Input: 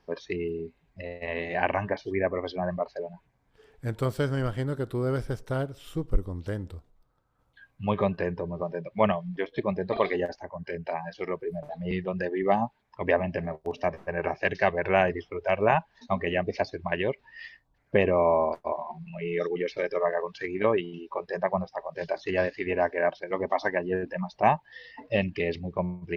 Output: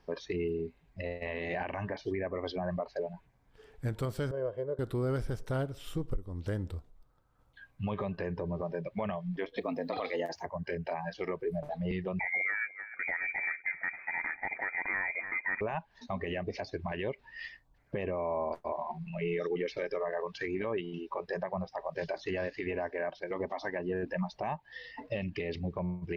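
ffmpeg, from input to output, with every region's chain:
ffmpeg -i in.wav -filter_complex "[0:a]asettb=1/sr,asplit=3[link_01][link_02][link_03];[link_01]atrim=end=4.314[link_04];[link_02]atrim=start=4.31:end=4.79,asetpts=PTS-STARTPTS,afade=type=in:duration=0.004:curve=qsin,afade=type=out:start_time=0.476:duration=0.004:curve=qsin,bandpass=frequency=500:width_type=q:width=2.3,aecho=1:1:1.9:0.68,atrim=end_sample=21168[link_05];[link_03]atrim=start=4.786[link_06];[link_04][link_05]acrossfade=duration=0.004:curve1=hsin:curve2=qsin[link_07];[link_07][link_06]acrossfade=duration=0.004:curve1=qsin:curve2=hsin,asettb=1/sr,asplit=3[link_08][link_09][link_10];[link_08]atrim=end=9.574[link_11];[link_09]atrim=start=9.57:end=10.46,asetpts=PTS-STARTPTS,afade=type=in:duration=0.004:curve=qsin,afade=type=out:start_time=0.886:duration=0.004:curve=qsin,afreqshift=71,aemphasis=mode=production:type=50kf[link_12];[link_10]atrim=start=10.456[link_13];[link_11][link_12]acrossfade=duration=0.004:curve1=hsin:curve2=qsin[link_14];[link_14][link_13]acrossfade=duration=0.004:curve1=qsin:curve2=hsin,asettb=1/sr,asplit=3[link_15][link_16][link_17];[link_15]atrim=end=12.194[link_18];[link_16]atrim=start=12.19:end=15.61,asetpts=PTS-STARTPTS,afade=type=in:duration=0.004:curve=qsin,afade=type=out:start_time=3.416:duration=0.004:curve=qsin,aecho=1:1:295|590|885:0.0891|0.0374|0.0157,atrim=end_sample=150822,lowpass=frequency=2100:width_type=q:width=0.5098,lowpass=frequency=2100:width_type=q:width=0.6013,lowpass=frequency=2100:width_type=q:width=0.9,lowpass=frequency=2100:width_type=q:width=2.563,afreqshift=-2500[link_19];[link_17]atrim=start=15.606[link_20];[link_18][link_19]acrossfade=duration=0.004:curve1=hsin:curve2=qsin[link_21];[link_21][link_20]acrossfade=duration=0.004:curve1=qsin:curve2=hsin,lowshelf=frequency=61:gain=6,acompressor=threshold=-28dB:ratio=4,alimiter=limit=-24dB:level=0:latency=1:release=21" out.wav

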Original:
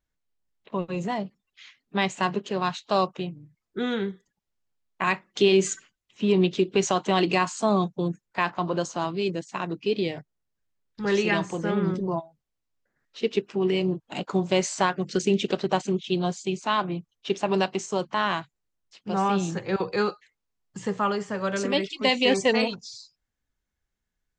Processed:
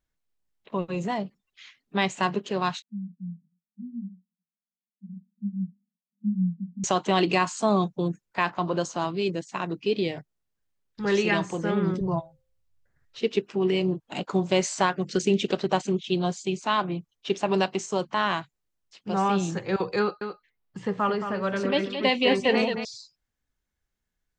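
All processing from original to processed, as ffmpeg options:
ffmpeg -i in.wav -filter_complex "[0:a]asettb=1/sr,asplit=3[link_01][link_02][link_03];[link_01]atrim=end=2.824[link_04];[link_02]atrim=start=2.82:end=6.84,asetpts=PTS-STARTPTS,afade=type=in:duration=0.004:curve=qsin,afade=type=out:start_time=4.016:duration=0.004:curve=qsin,asuperpass=centerf=200:order=12:qfactor=2.8,flanger=delay=16.5:depth=3.7:speed=2.5[link_05];[link_03]atrim=start=6.836[link_06];[link_04][link_05]acrossfade=duration=0.004:curve1=hsin:curve2=qsin[link_07];[link_07][link_06]acrossfade=duration=0.004:curve1=qsin:curve2=hsin,asettb=1/sr,asplit=3[link_08][link_09][link_10];[link_08]atrim=end=12.014[link_11];[link_09]atrim=start=12.01:end=13.2,asetpts=PTS-STARTPTS,afade=type=in:duration=0.004:curve=qsin,afade=type=out:start_time=1.186:duration=0.004:curve=qsin,lowshelf=frequency=160:width_type=q:width=1.5:gain=12,bandreject=frequency=261.1:width_type=h:width=4,bandreject=frequency=522.2:width_type=h:width=4,bandreject=frequency=783.3:width_type=h:width=4[link_12];[link_10]atrim=start=13.196[link_13];[link_11][link_12]acrossfade=duration=0.004:curve1=hsin:curve2=qsin[link_14];[link_14][link_13]acrossfade=duration=0.004:curve1=qsin:curve2=hsin,asettb=1/sr,asplit=3[link_15][link_16][link_17];[link_15]atrim=end=19.994[link_18];[link_16]atrim=start=19.99:end=22.85,asetpts=PTS-STARTPTS,afade=type=in:duration=0.004:curve=qsin,afade=type=out:start_time=2.856:duration=0.004:curve=qsin,equalizer=frequency=7200:width_type=o:width=0.87:gain=-14.5,aecho=1:1:221:0.376,atrim=end_sample=126126[link_19];[link_17]atrim=start=22.846[link_20];[link_18][link_19]acrossfade=duration=0.004:curve1=hsin:curve2=qsin[link_21];[link_21][link_20]acrossfade=duration=0.004:curve1=qsin:curve2=hsin" out.wav

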